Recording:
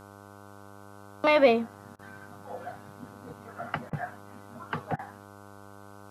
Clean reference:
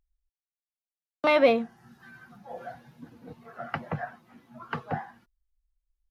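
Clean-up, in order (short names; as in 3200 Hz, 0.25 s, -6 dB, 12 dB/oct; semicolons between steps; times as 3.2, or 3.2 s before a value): de-hum 100.6 Hz, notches 15; interpolate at 1.96/3.9/4.96, 29 ms; expander -41 dBFS, range -21 dB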